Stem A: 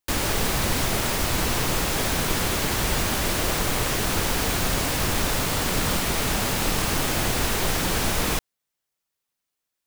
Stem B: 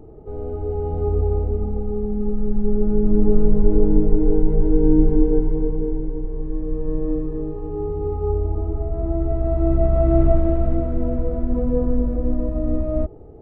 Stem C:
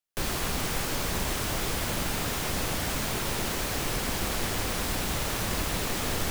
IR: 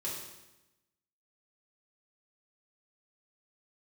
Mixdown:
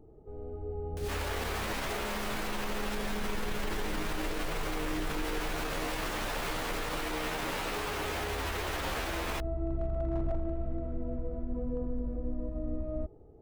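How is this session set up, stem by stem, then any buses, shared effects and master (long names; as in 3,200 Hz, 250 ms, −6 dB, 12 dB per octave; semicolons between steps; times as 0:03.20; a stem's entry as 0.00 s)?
−0.5 dB, 1.00 s, no send, bass and treble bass −14 dB, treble −11 dB; barber-pole flanger 11.9 ms +1.2 Hz
−13.0 dB, 0.00 s, no send, gain into a clipping stage and back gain 9 dB
−9.5 dB, 0.80 s, no send, brickwall limiter −20.5 dBFS, peak gain reduction 4.5 dB; rotating-speaker cabinet horn 6 Hz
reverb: not used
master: brickwall limiter −25 dBFS, peak gain reduction 9.5 dB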